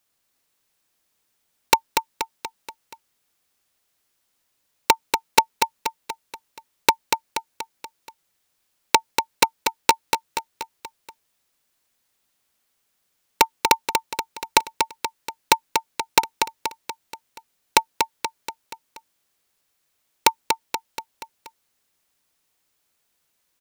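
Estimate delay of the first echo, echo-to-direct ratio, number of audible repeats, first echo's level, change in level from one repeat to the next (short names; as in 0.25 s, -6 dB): 0.239 s, -4.0 dB, 5, -5.5 dB, -5.5 dB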